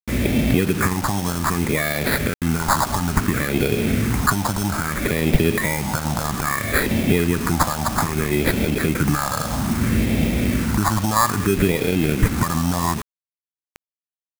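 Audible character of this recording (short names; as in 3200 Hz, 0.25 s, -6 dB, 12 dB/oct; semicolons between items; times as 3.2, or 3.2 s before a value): aliases and images of a low sample rate 2900 Hz, jitter 0%; phasing stages 4, 0.61 Hz, lowest notch 400–1100 Hz; a quantiser's noise floor 6-bit, dither none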